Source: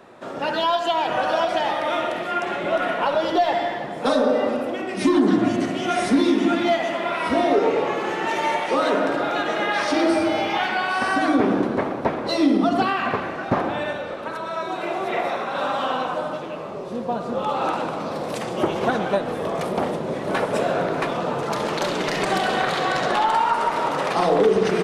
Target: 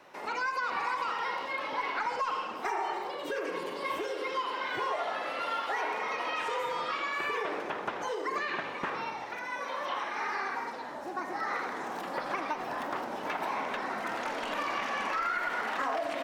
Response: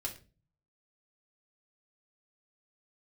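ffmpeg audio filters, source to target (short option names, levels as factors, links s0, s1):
-filter_complex "[0:a]acrossover=split=620|2000[s0][s1][s2];[s0]acompressor=threshold=0.0398:ratio=4[s3];[s1]acompressor=threshold=0.0794:ratio=4[s4];[s2]acompressor=threshold=0.00501:ratio=4[s5];[s3][s4][s5]amix=inputs=3:normalize=0,asetrate=67473,aresample=44100,volume=0.376"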